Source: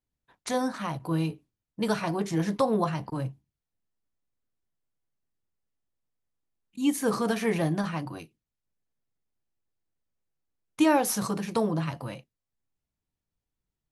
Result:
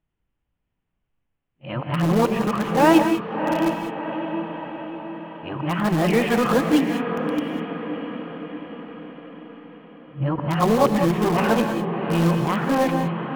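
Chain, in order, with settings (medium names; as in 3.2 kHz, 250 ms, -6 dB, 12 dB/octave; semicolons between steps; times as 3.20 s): reverse the whole clip; elliptic low-pass 2.9 kHz, stop band 60 dB; echo that smears into a reverb 713 ms, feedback 56%, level -8 dB; in parallel at -11 dB: integer overflow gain 23.5 dB; on the sum: gated-style reverb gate 230 ms rising, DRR 6.5 dB; speed mistake 24 fps film run at 25 fps; trim +7 dB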